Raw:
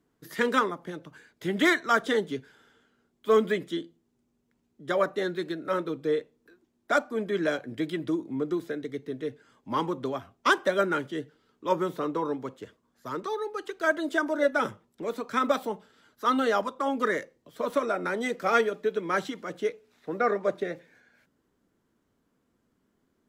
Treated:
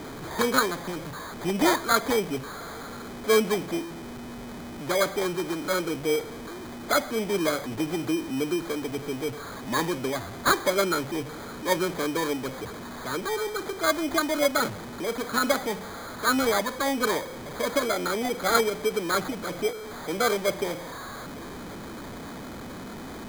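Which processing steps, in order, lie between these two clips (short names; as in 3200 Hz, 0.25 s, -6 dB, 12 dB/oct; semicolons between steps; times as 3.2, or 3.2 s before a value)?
zero-crossing step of -32.5 dBFS; sample-and-hold 16×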